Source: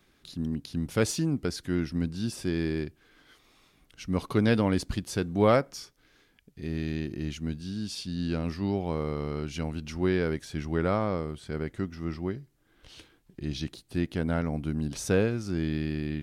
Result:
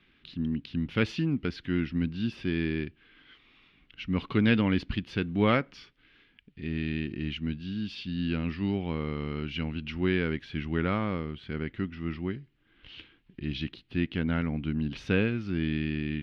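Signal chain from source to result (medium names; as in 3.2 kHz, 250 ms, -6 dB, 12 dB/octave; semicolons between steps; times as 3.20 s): FFT filter 140 Hz 0 dB, 240 Hz +3 dB, 640 Hz -7 dB, 2.9 kHz +9 dB, 5.2 kHz -11 dB, 7.8 kHz -29 dB; trim -1 dB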